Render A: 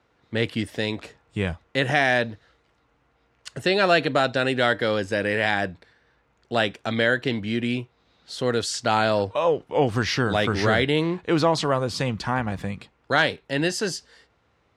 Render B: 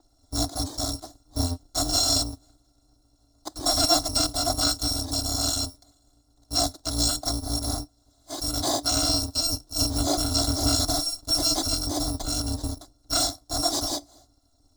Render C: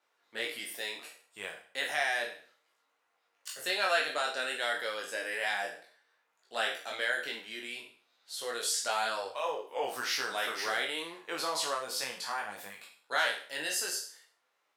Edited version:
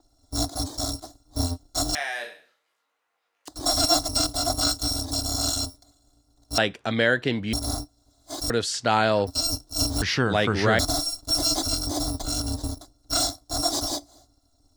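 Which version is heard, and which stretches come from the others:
B
0:01.95–0:03.48: punch in from C
0:06.58–0:07.53: punch in from A
0:08.50–0:09.27: punch in from A
0:10.02–0:10.79: punch in from A

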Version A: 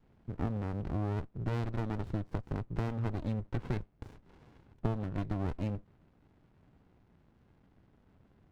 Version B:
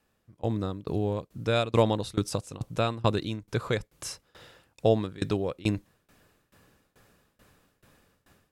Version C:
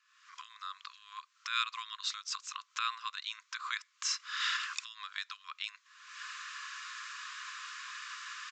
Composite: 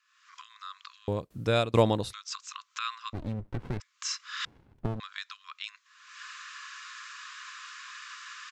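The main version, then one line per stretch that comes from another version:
C
0:01.08–0:02.13: punch in from B
0:03.13–0:03.80: punch in from A
0:04.45–0:05.00: punch in from A

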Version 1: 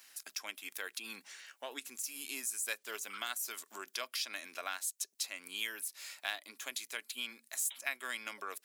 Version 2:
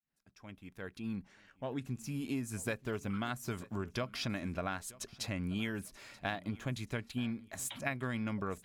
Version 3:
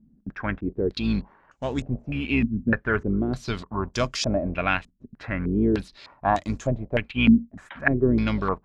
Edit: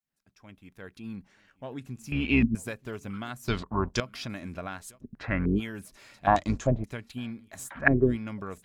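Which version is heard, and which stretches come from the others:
2
0:02.12–0:02.55: punch in from 3
0:03.48–0:04.00: punch in from 3
0:04.98–0:05.58: punch in from 3, crossfade 0.06 s
0:06.27–0:06.84: punch in from 3
0:07.70–0:08.10: punch in from 3, crossfade 0.16 s
not used: 1

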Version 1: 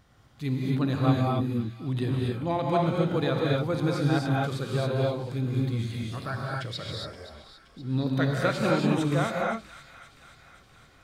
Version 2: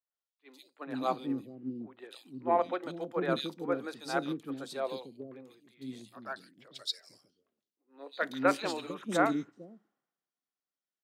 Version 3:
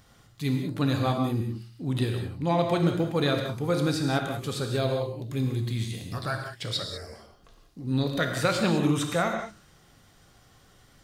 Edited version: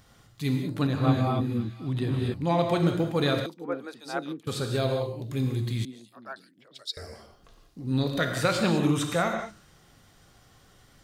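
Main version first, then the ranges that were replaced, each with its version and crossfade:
3
0:00.87–0:02.34: punch in from 1
0:03.46–0:04.47: punch in from 2
0:05.85–0:06.97: punch in from 2

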